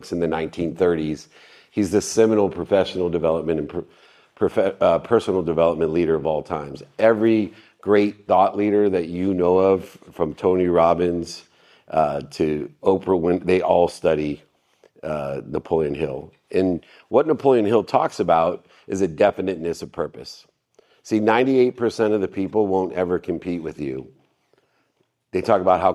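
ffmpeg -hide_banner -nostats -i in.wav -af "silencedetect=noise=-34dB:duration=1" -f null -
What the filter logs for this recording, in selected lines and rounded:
silence_start: 24.03
silence_end: 25.33 | silence_duration: 1.30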